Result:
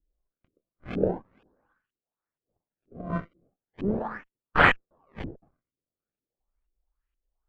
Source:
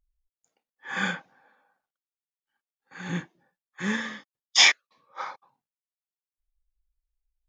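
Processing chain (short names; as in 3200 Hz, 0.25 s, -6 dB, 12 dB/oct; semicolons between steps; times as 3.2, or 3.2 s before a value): minimum comb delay 0.68 ms; decimation with a swept rate 29×, swing 160% 0.39 Hz; LFO low-pass saw up 2.1 Hz 300–2900 Hz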